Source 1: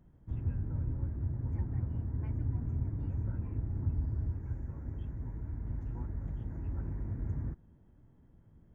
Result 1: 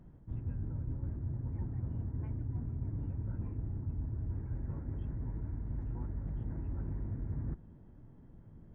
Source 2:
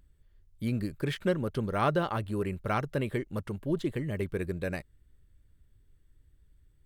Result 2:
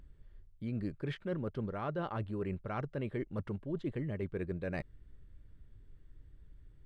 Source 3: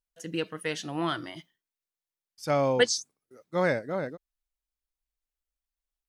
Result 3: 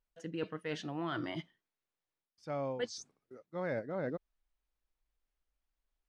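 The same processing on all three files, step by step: peaking EQ 70 Hz -5 dB 0.52 oct; reverse; compression 6:1, threshold -41 dBFS; reverse; tape spacing loss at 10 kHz 21 dB; trim +7 dB

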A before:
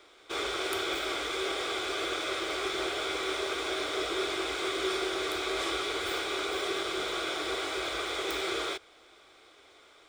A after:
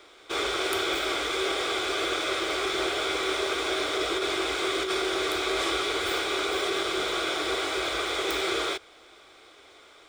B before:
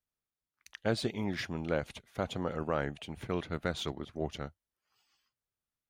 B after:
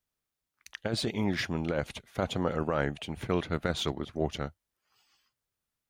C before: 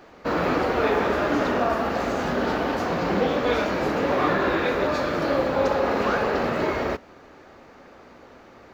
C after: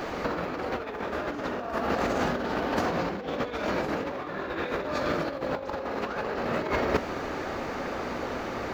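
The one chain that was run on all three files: compressor with a negative ratio -31 dBFS, ratio -0.5; trim +4.5 dB

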